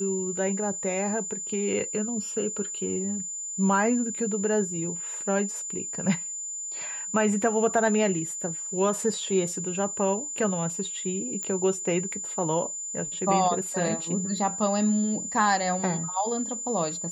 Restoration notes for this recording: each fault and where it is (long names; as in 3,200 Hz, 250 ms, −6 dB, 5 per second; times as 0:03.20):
whistle 7,100 Hz −32 dBFS
0:11.43: click −19 dBFS